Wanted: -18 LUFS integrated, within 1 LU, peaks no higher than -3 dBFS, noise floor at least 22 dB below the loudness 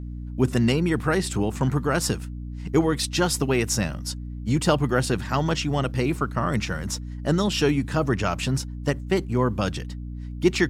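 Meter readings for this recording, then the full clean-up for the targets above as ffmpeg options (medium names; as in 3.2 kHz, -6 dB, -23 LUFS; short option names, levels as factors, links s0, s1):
hum 60 Hz; highest harmonic 300 Hz; hum level -31 dBFS; loudness -24.5 LUFS; peak level -7.5 dBFS; loudness target -18.0 LUFS
-> -af "bandreject=f=60:t=h:w=6,bandreject=f=120:t=h:w=6,bandreject=f=180:t=h:w=6,bandreject=f=240:t=h:w=6,bandreject=f=300:t=h:w=6"
-af "volume=2.11,alimiter=limit=0.708:level=0:latency=1"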